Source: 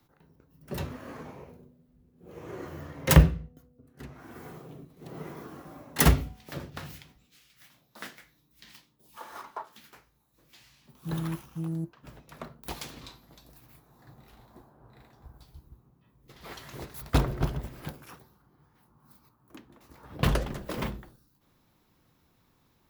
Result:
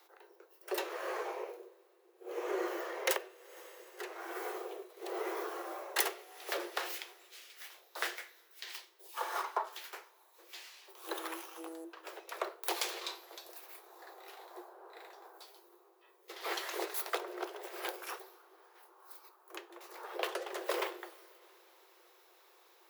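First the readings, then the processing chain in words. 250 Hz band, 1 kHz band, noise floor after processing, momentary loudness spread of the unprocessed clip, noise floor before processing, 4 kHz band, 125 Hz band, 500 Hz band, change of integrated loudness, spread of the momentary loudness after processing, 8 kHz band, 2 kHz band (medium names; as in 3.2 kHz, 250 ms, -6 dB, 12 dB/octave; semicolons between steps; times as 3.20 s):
-13.5 dB, -0.5 dB, -66 dBFS, 25 LU, -68 dBFS, -1.5 dB, under -40 dB, -1.0 dB, -9.5 dB, 17 LU, -4.5 dB, -1.5 dB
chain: two-slope reverb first 0.28 s, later 3.5 s, from -22 dB, DRR 14 dB; compression 12:1, threshold -35 dBFS, peak gain reduction 24.5 dB; Chebyshev high-pass 340 Hz, order 10; trim +7.5 dB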